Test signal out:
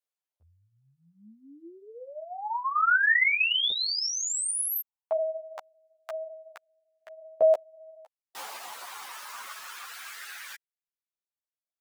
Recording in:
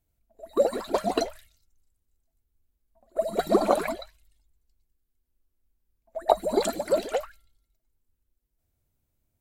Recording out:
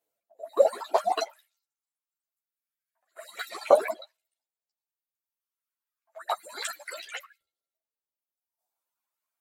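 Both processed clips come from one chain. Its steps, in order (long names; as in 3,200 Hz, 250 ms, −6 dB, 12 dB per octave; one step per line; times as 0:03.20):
auto-filter high-pass saw up 0.27 Hz 500–2,100 Hz
reverb reduction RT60 1.6 s
string-ensemble chorus
level +2 dB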